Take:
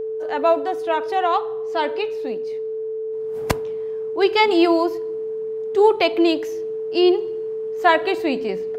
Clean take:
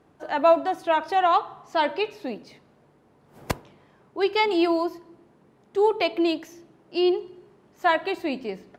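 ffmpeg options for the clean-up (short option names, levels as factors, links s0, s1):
-af "bandreject=f=440:w=30,asetnsamples=n=441:p=0,asendcmd='3.13 volume volume -5.5dB',volume=1"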